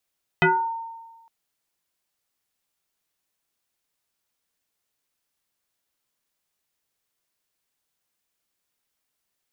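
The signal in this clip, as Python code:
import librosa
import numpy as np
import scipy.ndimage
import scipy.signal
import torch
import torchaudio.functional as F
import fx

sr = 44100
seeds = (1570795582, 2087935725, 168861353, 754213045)

y = fx.fm2(sr, length_s=0.86, level_db=-13.0, carrier_hz=913.0, ratio=0.59, index=3.5, index_s=0.39, decay_s=1.3, shape='exponential')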